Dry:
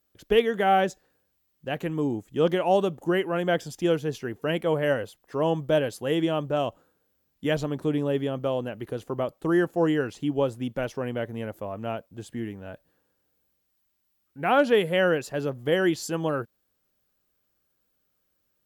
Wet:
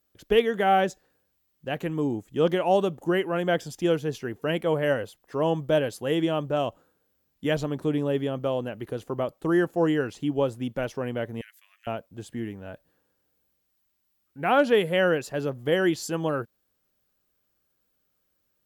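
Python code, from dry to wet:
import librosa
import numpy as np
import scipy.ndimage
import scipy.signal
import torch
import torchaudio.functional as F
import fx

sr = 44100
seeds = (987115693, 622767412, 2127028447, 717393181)

y = fx.cheby1_highpass(x, sr, hz=1800.0, order=4, at=(11.41, 11.87))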